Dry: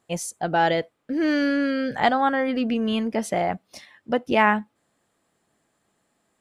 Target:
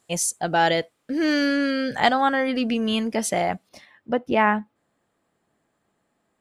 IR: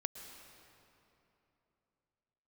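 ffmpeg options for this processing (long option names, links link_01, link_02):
-af "asetnsamples=nb_out_samples=441:pad=0,asendcmd='3.69 equalizer g -7.5',equalizer=frequency=8500:width_type=o:width=2.6:gain=9"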